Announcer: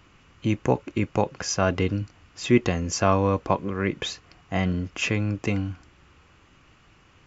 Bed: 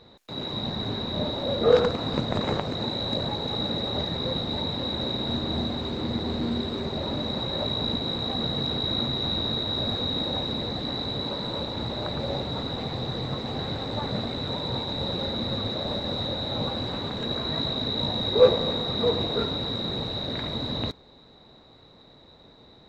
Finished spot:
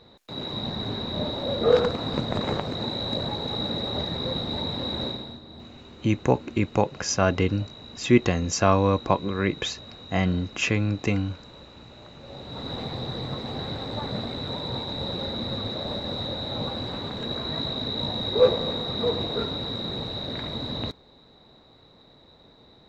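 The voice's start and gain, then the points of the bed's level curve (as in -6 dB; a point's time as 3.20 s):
5.60 s, +1.0 dB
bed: 5.06 s -0.5 dB
5.41 s -16.5 dB
12.19 s -16.5 dB
12.71 s -1.5 dB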